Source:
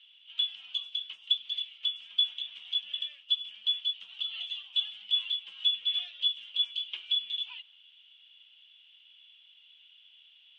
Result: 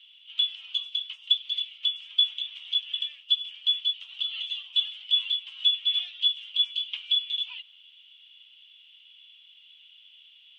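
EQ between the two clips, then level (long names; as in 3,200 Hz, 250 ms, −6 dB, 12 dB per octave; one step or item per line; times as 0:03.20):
high-pass filter 1,100 Hz 12 dB per octave
parametric band 1,600 Hz −5.5 dB 0.37 octaves
+4.5 dB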